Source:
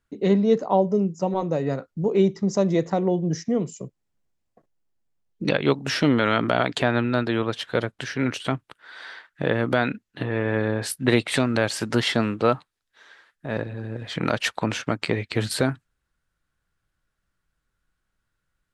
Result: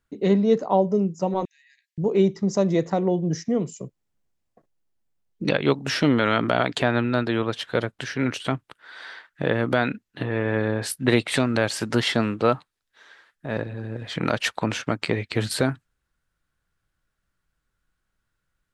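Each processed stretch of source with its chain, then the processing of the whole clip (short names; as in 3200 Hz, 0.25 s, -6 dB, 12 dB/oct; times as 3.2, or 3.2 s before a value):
1.45–1.98 compressor 8:1, threshold -34 dBFS + brick-wall FIR high-pass 1600 Hz
whole clip: dry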